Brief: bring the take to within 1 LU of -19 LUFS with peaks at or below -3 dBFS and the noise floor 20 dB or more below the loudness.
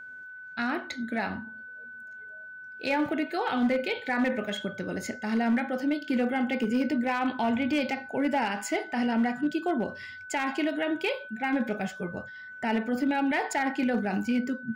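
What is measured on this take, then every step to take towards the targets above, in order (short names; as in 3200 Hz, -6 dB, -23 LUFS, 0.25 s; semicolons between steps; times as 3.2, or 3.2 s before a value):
clipped 0.8%; flat tops at -20.0 dBFS; steady tone 1500 Hz; tone level -41 dBFS; loudness -29.0 LUFS; peak -20.0 dBFS; loudness target -19.0 LUFS
-> clip repair -20 dBFS; notch 1500 Hz, Q 30; gain +10 dB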